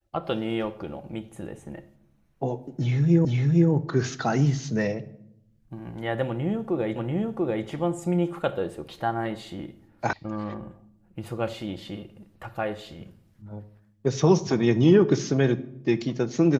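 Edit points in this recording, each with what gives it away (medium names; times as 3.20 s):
3.25 s: repeat of the last 0.46 s
6.96 s: repeat of the last 0.69 s
10.13 s: sound stops dead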